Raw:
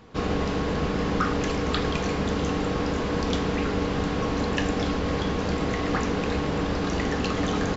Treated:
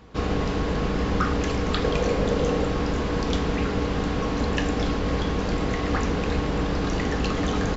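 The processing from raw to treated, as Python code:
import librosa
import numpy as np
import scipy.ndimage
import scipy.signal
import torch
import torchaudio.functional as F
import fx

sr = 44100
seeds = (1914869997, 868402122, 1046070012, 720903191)

y = fx.octave_divider(x, sr, octaves=2, level_db=-1.0)
y = fx.peak_eq(y, sr, hz=520.0, db=9.0, octaves=0.47, at=(1.84, 2.65))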